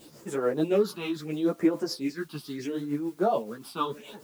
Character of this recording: phasing stages 6, 0.74 Hz, lowest notch 500–4300 Hz; a quantiser's noise floor 10-bit, dither triangular; tremolo triangle 6.9 Hz, depth 60%; a shimmering, thickened sound

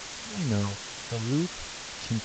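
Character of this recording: phasing stages 8, 2.4 Hz, lowest notch 300–2400 Hz; a quantiser's noise floor 6-bit, dither triangular; G.722

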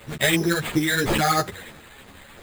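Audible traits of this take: a quantiser's noise floor 8-bit, dither none; phasing stages 8, 3 Hz, lowest notch 310–3600 Hz; aliases and images of a low sample rate 5600 Hz, jitter 0%; a shimmering, thickened sound

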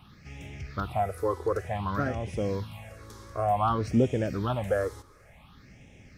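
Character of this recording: phasing stages 6, 0.55 Hz, lowest notch 180–1200 Hz

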